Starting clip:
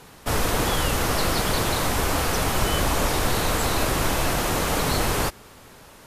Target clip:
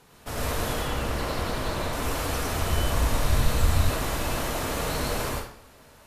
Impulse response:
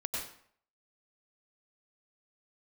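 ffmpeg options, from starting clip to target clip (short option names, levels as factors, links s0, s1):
-filter_complex "[0:a]asettb=1/sr,asplit=3[s0][s1][s2];[s0]atrim=end=0.734[s3];[s1]atrim=start=0.73:end=1.93,asetpts=PTS-STARTPTS,afade=t=in:d=0.004:c=qsin,afade=t=out:st=1.196:d=0.004:c=qsin,highshelf=f=4600:g=-8[s4];[s2]atrim=start=1.926[s5];[s3][s4]acrossfade=d=0.004:c1=hsin:c2=qsin[s6];[s6][s5]acrossfade=d=0.004:c1=qsin:c2=hsin[s7];[1:a]atrim=start_sample=2205[s8];[s7][s8]afir=irnorm=-1:irlink=0,asettb=1/sr,asplit=3[s9][s10][s11];[s9]atrim=end=2.554[s12];[s10]atrim=start=2.55:end=3.9,asetpts=PTS-STARTPTS,afade=t=in:d=0.004:c=qsin,afade=t=out:st=1.346:d=0.004:c=qsin,asubboost=boost=8.5:cutoff=180[s13];[s11]atrim=start=3.896[s14];[s12][s13]acrossfade=d=0.004:c1=hsin:c2=qsin[s15];[s15][s14]acrossfade=d=0.004:c1=qsin:c2=hsin,volume=0.376"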